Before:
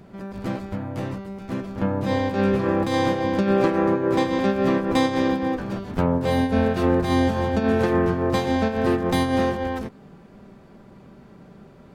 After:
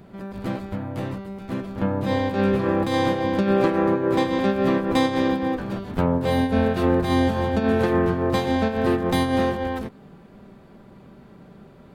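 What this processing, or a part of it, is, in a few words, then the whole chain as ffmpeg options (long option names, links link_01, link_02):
exciter from parts: -filter_complex "[0:a]asplit=2[link_01][link_02];[link_02]highpass=frequency=2800:width=0.5412,highpass=frequency=2800:width=1.3066,asoftclip=type=tanh:threshold=-32dB,highpass=frequency=3900:width=0.5412,highpass=frequency=3900:width=1.3066,volume=-9dB[link_03];[link_01][link_03]amix=inputs=2:normalize=0"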